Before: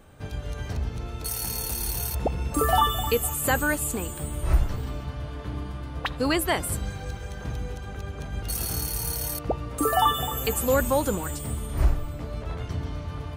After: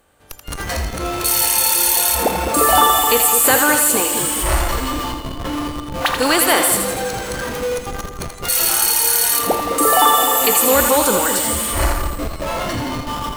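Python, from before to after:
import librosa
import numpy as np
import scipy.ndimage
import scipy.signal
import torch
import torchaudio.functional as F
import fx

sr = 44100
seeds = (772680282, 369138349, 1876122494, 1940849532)

p1 = fx.bin_compress(x, sr, power=0.6)
p2 = fx.low_shelf(p1, sr, hz=210.0, db=-6.5)
p3 = fx.noise_reduce_blind(p2, sr, reduce_db=25)
p4 = fx.high_shelf(p3, sr, hz=3300.0, db=6.0)
p5 = fx.schmitt(p4, sr, flips_db=-35.0)
p6 = p4 + (p5 * librosa.db_to_amplitude(-5.5))
p7 = fx.echo_split(p6, sr, split_hz=600.0, low_ms=210, high_ms=82, feedback_pct=52, wet_db=-6.5)
y = p7 * librosa.db_to_amplitude(3.5)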